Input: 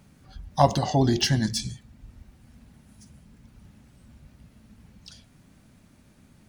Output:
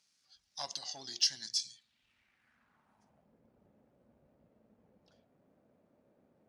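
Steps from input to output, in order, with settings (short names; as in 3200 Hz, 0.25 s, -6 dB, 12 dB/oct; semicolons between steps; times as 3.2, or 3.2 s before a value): half-wave gain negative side -3 dB; band-pass sweep 5200 Hz -> 530 Hz, 1.63–3.38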